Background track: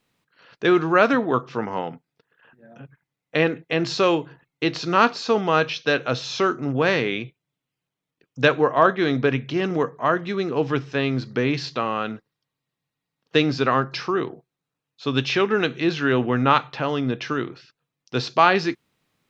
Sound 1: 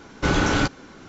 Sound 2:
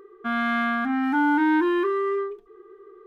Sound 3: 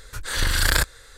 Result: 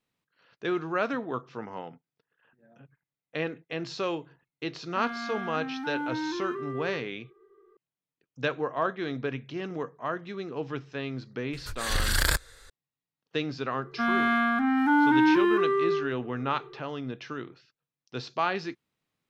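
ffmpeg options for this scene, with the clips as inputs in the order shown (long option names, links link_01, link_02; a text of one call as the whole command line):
ffmpeg -i bed.wav -i cue0.wav -i cue1.wav -i cue2.wav -filter_complex "[2:a]asplit=2[link_01][link_02];[0:a]volume=-11.5dB[link_03];[link_01]atrim=end=3.06,asetpts=PTS-STARTPTS,volume=-12dB,afade=type=in:duration=0.004:curve=hsin,afade=type=out:start_time=3.056:duration=0.004:curve=hsin,adelay=4710[link_04];[3:a]atrim=end=1.17,asetpts=PTS-STARTPTS,volume=-5dB,afade=type=in:duration=0.004:curve=hsin,afade=type=out:start_time=1.166:duration=0.004:curve=hsin,adelay=11530[link_05];[link_02]atrim=end=3.06,asetpts=PTS-STARTPTS,volume=-0.5dB,afade=type=in:duration=0.004:curve=hsin,afade=type=out:start_time=3.056:duration=0.004:curve=hsin,adelay=13740[link_06];[link_03][link_04][link_05][link_06]amix=inputs=4:normalize=0" out.wav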